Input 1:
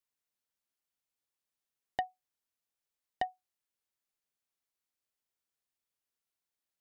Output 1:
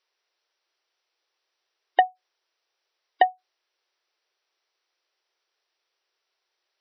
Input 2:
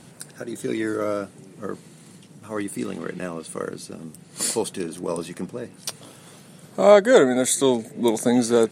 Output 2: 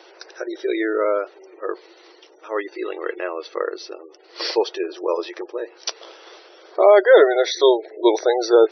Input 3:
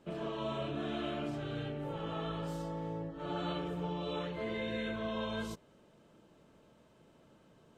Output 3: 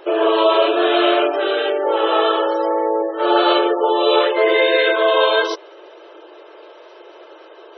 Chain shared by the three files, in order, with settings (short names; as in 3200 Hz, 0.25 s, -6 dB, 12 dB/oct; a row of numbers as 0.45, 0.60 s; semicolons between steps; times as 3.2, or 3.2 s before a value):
spectral gate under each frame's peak -30 dB strong; brick-wall FIR band-pass 320–6000 Hz; maximiser +8 dB; normalise peaks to -3 dBFS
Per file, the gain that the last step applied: +7.5, -2.0, +16.5 dB